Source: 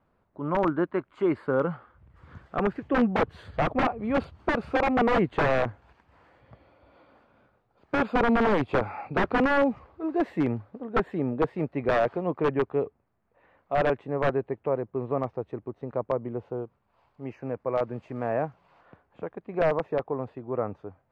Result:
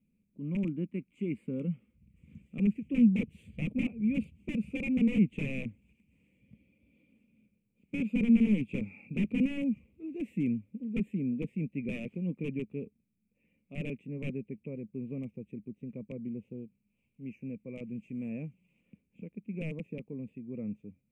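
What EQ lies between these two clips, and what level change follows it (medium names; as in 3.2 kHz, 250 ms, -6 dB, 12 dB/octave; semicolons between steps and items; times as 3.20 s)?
FFT filter 120 Hz 0 dB, 210 Hz +14 dB, 350 Hz -5 dB, 510 Hz -8 dB, 720 Hz -27 dB, 1.6 kHz -29 dB, 2.4 kHz +9 dB, 4.3 kHz -17 dB, 7.8 kHz +8 dB; -8.5 dB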